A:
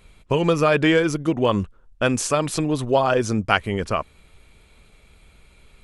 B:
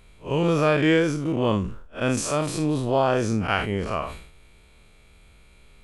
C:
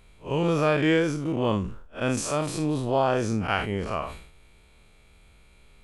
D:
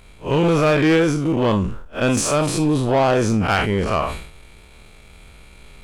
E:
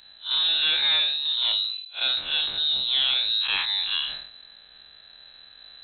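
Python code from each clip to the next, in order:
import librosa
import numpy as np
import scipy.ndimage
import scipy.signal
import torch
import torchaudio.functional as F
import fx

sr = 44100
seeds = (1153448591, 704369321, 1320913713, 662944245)

y1 = fx.spec_blur(x, sr, span_ms=108.0)
y1 = fx.sustainer(y1, sr, db_per_s=77.0)
y2 = fx.peak_eq(y1, sr, hz=830.0, db=2.0, octaves=0.38)
y2 = y2 * librosa.db_to_amplitude(-2.5)
y3 = fx.rider(y2, sr, range_db=10, speed_s=2.0)
y3 = 10.0 ** (-14.0 / 20.0) * np.tanh(y3 / 10.0 ** (-14.0 / 20.0))
y3 = fx.leveller(y3, sr, passes=1)
y3 = y3 * librosa.db_to_amplitude(5.0)
y4 = fx.freq_invert(y3, sr, carrier_hz=4000)
y4 = y4 * librosa.db_to_amplitude(-7.0)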